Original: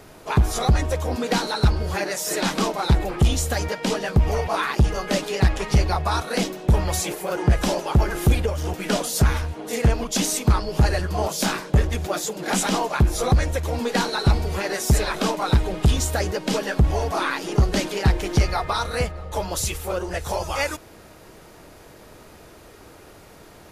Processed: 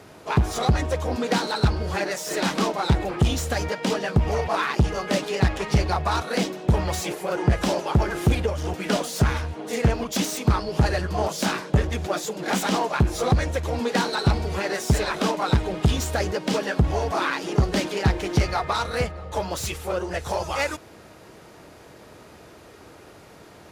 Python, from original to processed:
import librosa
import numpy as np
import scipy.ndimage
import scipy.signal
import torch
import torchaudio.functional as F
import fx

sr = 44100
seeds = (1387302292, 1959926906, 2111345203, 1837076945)

y = fx.self_delay(x, sr, depth_ms=0.062)
y = scipy.signal.sosfilt(scipy.signal.butter(2, 71.0, 'highpass', fs=sr, output='sos'), y)
y = fx.high_shelf(y, sr, hz=11000.0, db=-10.0)